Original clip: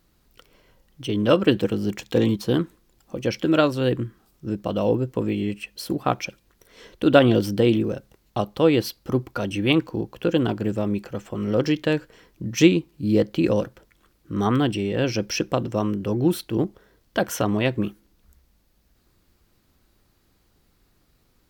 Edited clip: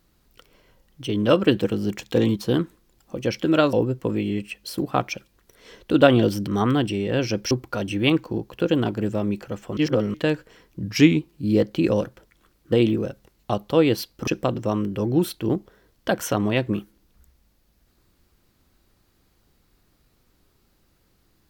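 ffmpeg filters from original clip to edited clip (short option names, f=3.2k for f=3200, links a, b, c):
-filter_complex "[0:a]asplit=10[a][b][c][d][e][f][g][h][i][j];[a]atrim=end=3.732[k];[b]atrim=start=4.848:end=7.592[l];[c]atrim=start=14.318:end=15.362[m];[d]atrim=start=9.138:end=11.402[n];[e]atrim=start=11.398:end=11.772,asetpts=PTS-STARTPTS,areverse[o];[f]atrim=start=11.768:end=12.464[p];[g]atrim=start=12.46:end=12.79,asetpts=PTS-STARTPTS,asetrate=40131,aresample=44100,atrim=end_sample=15992,asetpts=PTS-STARTPTS[q];[h]atrim=start=12.786:end=14.322[r];[i]atrim=start=7.588:end=9.142[s];[j]atrim=start=15.358[t];[k][l]acrossfade=d=0.004:c1=hsin:c2=hsin[u];[u][m]acrossfade=d=0.004:c1=hsin:c2=hsin[v];[v][n]acrossfade=d=0.004:c1=hsin:c2=hsin[w];[w][o]acrossfade=d=0.004:c1=hsin:c2=hsin[x];[x][p]acrossfade=d=0.004:c1=hsin:c2=hsin[y];[y][q]acrossfade=d=0.004:c1=hsin:c2=hsin[z];[z][r]acrossfade=d=0.004:c1=hsin:c2=hsin[aa];[aa][s]acrossfade=d=0.004:c1=hsin:c2=hsin[ab];[ab][t]acrossfade=d=0.004:c1=hsin:c2=hsin"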